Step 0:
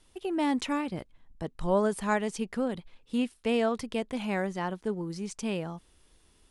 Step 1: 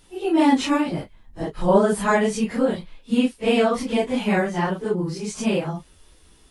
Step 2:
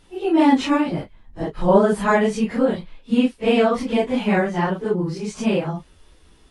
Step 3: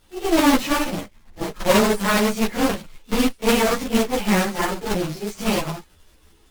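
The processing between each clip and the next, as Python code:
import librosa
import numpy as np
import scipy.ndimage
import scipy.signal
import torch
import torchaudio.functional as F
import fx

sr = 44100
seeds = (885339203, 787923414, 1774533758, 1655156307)

y1 = fx.phase_scramble(x, sr, seeds[0], window_ms=100)
y1 = y1 * librosa.db_to_amplitude(9.0)
y2 = fx.high_shelf(y1, sr, hz=6400.0, db=-11.5)
y2 = y2 * librosa.db_to_amplitude(2.0)
y3 = fx.block_float(y2, sr, bits=3)
y3 = fx.cheby_harmonics(y3, sr, harmonics=(8,), levels_db=(-14,), full_scale_db=-2.0)
y3 = fx.ensemble(y3, sr)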